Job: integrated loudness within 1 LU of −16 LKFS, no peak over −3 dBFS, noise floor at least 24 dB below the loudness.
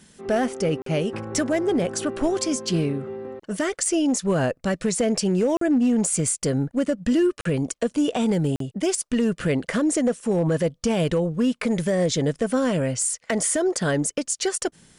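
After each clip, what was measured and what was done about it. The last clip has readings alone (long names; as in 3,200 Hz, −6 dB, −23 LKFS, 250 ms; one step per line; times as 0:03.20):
share of clipped samples 0.7%; peaks flattened at −14.5 dBFS; number of dropouts 4; longest dropout 43 ms; integrated loudness −23.5 LKFS; sample peak −14.5 dBFS; target loudness −16.0 LKFS
→ clipped peaks rebuilt −14.5 dBFS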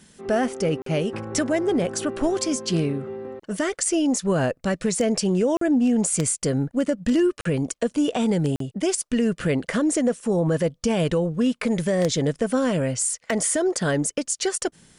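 share of clipped samples 0.0%; number of dropouts 4; longest dropout 43 ms
→ repair the gap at 0:00.82/0:05.57/0:07.41/0:08.56, 43 ms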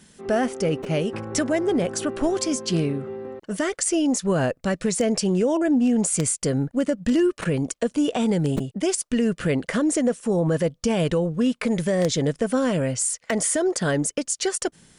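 number of dropouts 0; integrated loudness −23.0 LKFS; sample peak −5.5 dBFS; target loudness −16.0 LKFS
→ level +7 dB
brickwall limiter −3 dBFS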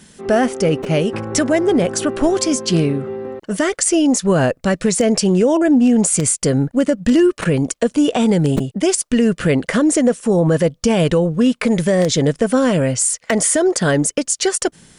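integrated loudness −16.5 LKFS; sample peak −3.0 dBFS; background noise floor −55 dBFS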